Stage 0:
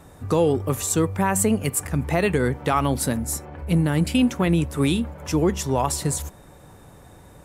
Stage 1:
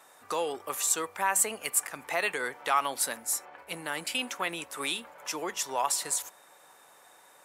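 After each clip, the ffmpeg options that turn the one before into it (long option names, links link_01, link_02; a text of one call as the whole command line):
ffmpeg -i in.wav -af "highpass=870,volume=-1.5dB" out.wav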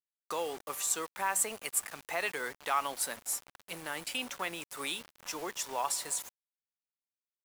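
ffmpeg -i in.wav -af "acrusher=bits=6:mix=0:aa=0.000001,volume=-4.5dB" out.wav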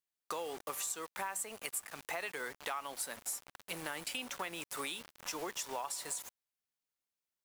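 ffmpeg -i in.wav -af "acompressor=threshold=-39dB:ratio=6,volume=2.5dB" out.wav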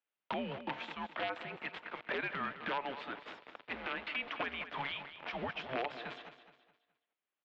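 ffmpeg -i in.wav -af "aeval=exprs='(mod(29.9*val(0)+1,2)-1)/29.9':channel_layout=same,aecho=1:1:210|420|630|840:0.251|0.0929|0.0344|0.0127,highpass=frequency=520:width_type=q:width=0.5412,highpass=frequency=520:width_type=q:width=1.307,lowpass=frequency=3500:width_type=q:width=0.5176,lowpass=frequency=3500:width_type=q:width=0.7071,lowpass=frequency=3500:width_type=q:width=1.932,afreqshift=-270,volume=4.5dB" out.wav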